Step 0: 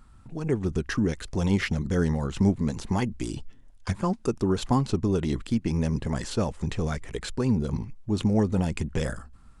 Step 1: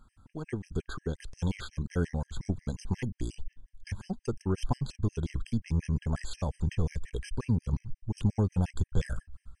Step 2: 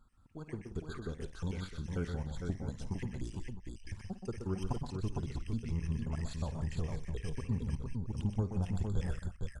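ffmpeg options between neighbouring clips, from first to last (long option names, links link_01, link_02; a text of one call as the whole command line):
ffmpeg -i in.wav -af "asubboost=boost=3.5:cutoff=120,afftfilt=real='re*gt(sin(2*PI*5.6*pts/sr)*(1-2*mod(floor(b*sr/1024/1600),2)),0)':imag='im*gt(sin(2*PI*5.6*pts/sr)*(1-2*mod(floor(b*sr/1024/1600),2)),0)':win_size=1024:overlap=0.75,volume=-4.5dB" out.wav
ffmpeg -i in.wav -af "aecho=1:1:53|125|146|179|457|658:0.188|0.447|0.133|0.168|0.596|0.2,volume=-7.5dB" out.wav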